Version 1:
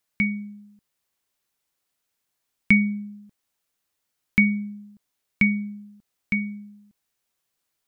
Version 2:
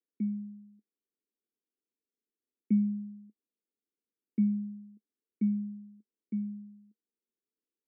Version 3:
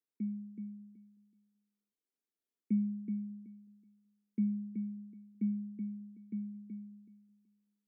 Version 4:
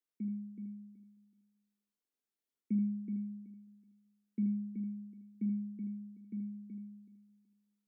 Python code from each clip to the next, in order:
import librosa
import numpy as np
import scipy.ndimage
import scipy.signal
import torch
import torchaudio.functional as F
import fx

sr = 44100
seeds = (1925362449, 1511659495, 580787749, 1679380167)

y1 = scipy.signal.sosfilt(scipy.signal.ellip(3, 1.0, 40, [210.0, 470.0], 'bandpass', fs=sr, output='sos'), x)
y1 = y1 * librosa.db_to_amplitude(-3.5)
y2 = fx.echo_feedback(y1, sr, ms=376, feedback_pct=21, wet_db=-5)
y2 = y2 * librosa.db_to_amplitude(-5.0)
y3 = fx.room_early_taps(y2, sr, ms=(44, 79), db=(-10.5, -7.0))
y3 = y3 * librosa.db_to_amplitude(-2.5)